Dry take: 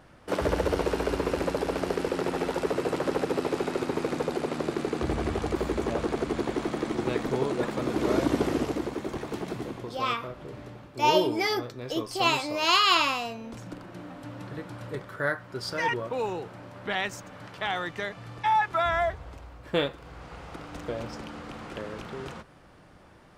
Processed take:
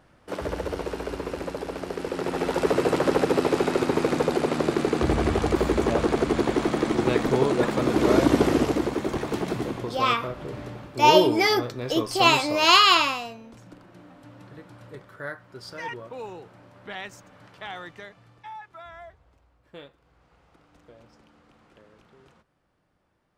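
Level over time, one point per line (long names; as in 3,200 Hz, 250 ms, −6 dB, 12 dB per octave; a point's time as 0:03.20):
0:01.89 −4 dB
0:02.70 +6 dB
0:12.80 +6 dB
0:13.53 −7 dB
0:17.87 −7 dB
0:18.61 −18 dB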